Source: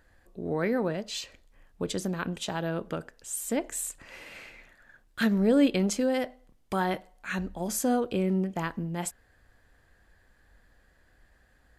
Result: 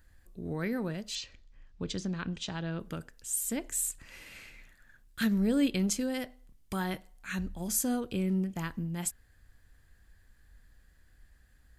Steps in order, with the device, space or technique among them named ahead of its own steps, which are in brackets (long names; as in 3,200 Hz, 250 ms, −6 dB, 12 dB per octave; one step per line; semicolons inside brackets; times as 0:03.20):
smiley-face EQ (low-shelf EQ 140 Hz +8 dB; parametric band 620 Hz −7.5 dB 1.8 octaves; high-shelf EQ 6,400 Hz +8.5 dB)
0:01.15–0:02.80: low-pass filter 6,000 Hz 24 dB per octave
level −3.5 dB